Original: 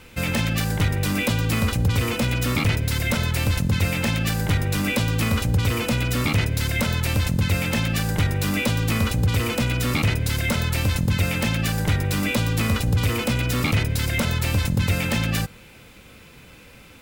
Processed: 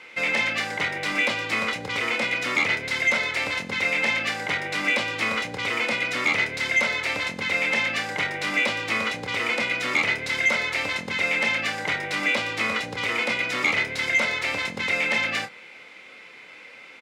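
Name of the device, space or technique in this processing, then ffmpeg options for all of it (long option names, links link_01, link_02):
intercom: -filter_complex "[0:a]highpass=460,lowpass=4800,equalizer=frequency=2100:width_type=o:width=0.21:gain=11.5,asoftclip=type=tanh:threshold=-12.5dB,asplit=2[link_01][link_02];[link_02]adelay=27,volume=-8dB[link_03];[link_01][link_03]amix=inputs=2:normalize=0,volume=1dB"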